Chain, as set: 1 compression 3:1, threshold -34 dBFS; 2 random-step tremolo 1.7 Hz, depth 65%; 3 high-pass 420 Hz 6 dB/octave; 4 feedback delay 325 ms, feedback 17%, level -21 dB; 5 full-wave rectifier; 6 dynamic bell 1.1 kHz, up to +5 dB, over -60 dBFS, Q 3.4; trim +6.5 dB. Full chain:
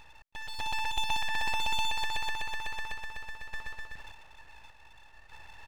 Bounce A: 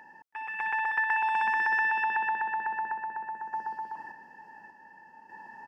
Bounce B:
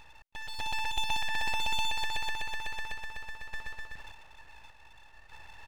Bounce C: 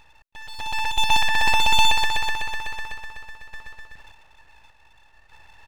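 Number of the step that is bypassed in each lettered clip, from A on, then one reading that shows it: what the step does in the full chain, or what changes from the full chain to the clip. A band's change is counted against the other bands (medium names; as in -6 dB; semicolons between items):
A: 5, 500 Hz band -10.0 dB; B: 6, momentary loudness spread change +1 LU; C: 1, mean gain reduction 4.5 dB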